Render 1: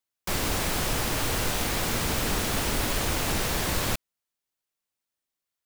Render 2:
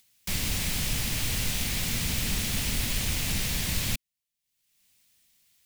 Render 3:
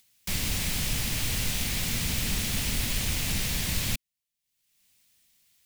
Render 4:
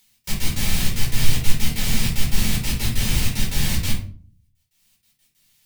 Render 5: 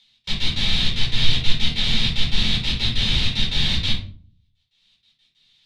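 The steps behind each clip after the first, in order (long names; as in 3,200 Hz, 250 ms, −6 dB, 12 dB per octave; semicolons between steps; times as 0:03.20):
flat-topped bell 680 Hz −12 dB 2.7 octaves; upward compression, threshold −47 dBFS
no processing that can be heard
gate pattern "xx.x.x.xxxx.x.x" 188 BPM; rectangular room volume 330 cubic metres, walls furnished, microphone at 4.4 metres; level −1.5 dB
low-pass with resonance 3,700 Hz, resonance Q 5.9; level −2 dB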